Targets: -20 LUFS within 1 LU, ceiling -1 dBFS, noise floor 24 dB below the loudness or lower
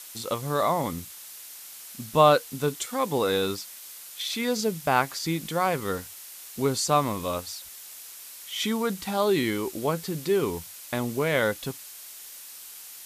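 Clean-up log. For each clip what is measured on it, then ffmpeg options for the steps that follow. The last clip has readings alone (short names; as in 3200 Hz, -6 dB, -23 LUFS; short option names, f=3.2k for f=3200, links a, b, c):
noise floor -44 dBFS; noise floor target -51 dBFS; loudness -26.5 LUFS; peak -5.0 dBFS; loudness target -20.0 LUFS
-> -af "afftdn=nr=7:nf=-44"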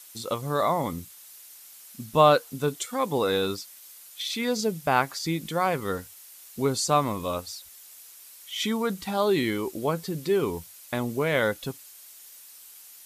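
noise floor -49 dBFS; noise floor target -51 dBFS
-> -af "afftdn=nr=6:nf=-49"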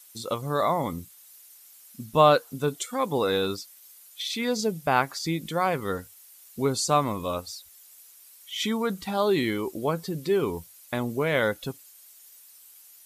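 noise floor -52 dBFS; loudness -26.5 LUFS; peak -5.0 dBFS; loudness target -20.0 LUFS
-> -af "volume=6.5dB,alimiter=limit=-1dB:level=0:latency=1"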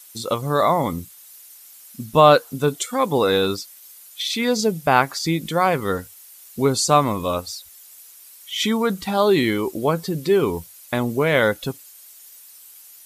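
loudness -20.5 LUFS; peak -1.0 dBFS; noise floor -46 dBFS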